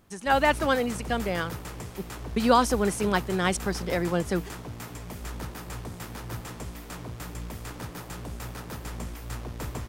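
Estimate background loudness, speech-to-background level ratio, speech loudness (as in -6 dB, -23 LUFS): -38.5 LUFS, 12.5 dB, -26.0 LUFS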